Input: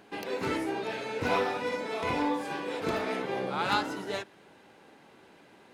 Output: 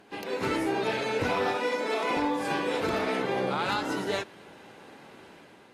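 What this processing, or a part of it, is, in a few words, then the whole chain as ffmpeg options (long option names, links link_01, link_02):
low-bitrate web radio: -filter_complex "[0:a]asettb=1/sr,asplit=3[link_01][link_02][link_03];[link_01]atrim=end=1.564[link_04];[link_02]atrim=start=1.56:end=2.17,asetpts=PTS-STARTPTS,afade=type=in:duration=0.004:curve=qsin,afade=type=out:start_time=0.606:duration=0.004:curve=qsin,highpass=frequency=240:width=0.5412,highpass=frequency=240:width=1.3066[link_05];[link_03]atrim=start=2.166[link_06];[link_04][link_05]acrossfade=duration=0.004:curve1=hsin:curve2=qsin[link_07];[link_07][link_06]acrossfade=duration=0.004:curve1=qsin:curve2=hsin,dynaudnorm=framelen=150:gausssize=7:maxgain=6dB,alimiter=limit=-18.5dB:level=0:latency=1:release=151" -ar 32000 -c:a aac -b:a 48k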